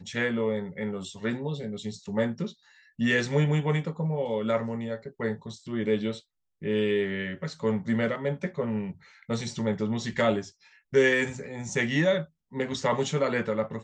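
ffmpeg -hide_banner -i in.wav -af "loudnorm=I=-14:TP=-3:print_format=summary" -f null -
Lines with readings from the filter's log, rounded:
Input Integrated:    -28.1 LUFS
Input True Peak:     -10.6 dBTP
Input LRA:             3.8 LU
Input Threshold:     -38.4 LUFS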